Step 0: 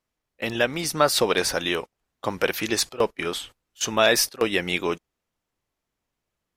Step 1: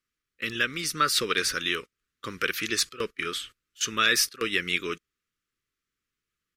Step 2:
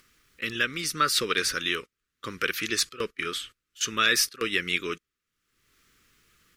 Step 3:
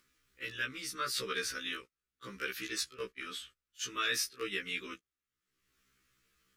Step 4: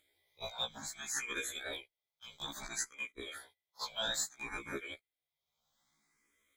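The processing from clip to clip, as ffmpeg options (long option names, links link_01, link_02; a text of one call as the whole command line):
ffmpeg -i in.wav -af "firequalizer=gain_entry='entry(440,0);entry(770,-28);entry(1200,7);entry(13000,3)':delay=0.05:min_phase=1,volume=-7dB" out.wav
ffmpeg -i in.wav -af "acompressor=mode=upward:threshold=-45dB:ratio=2.5" out.wav
ffmpeg -i in.wav -af "afftfilt=real='re*1.73*eq(mod(b,3),0)':imag='im*1.73*eq(mod(b,3),0)':win_size=2048:overlap=0.75,volume=-8dB" out.wav
ffmpeg -i in.wav -filter_complex "[0:a]afftfilt=real='real(if(lt(b,920),b+92*(1-2*mod(floor(b/92),2)),b),0)':imag='imag(if(lt(b,920),b+92*(1-2*mod(floor(b/92),2)),b),0)':win_size=2048:overlap=0.75,asplit=2[link_01][link_02];[link_02]afreqshift=0.6[link_03];[link_01][link_03]amix=inputs=2:normalize=1" out.wav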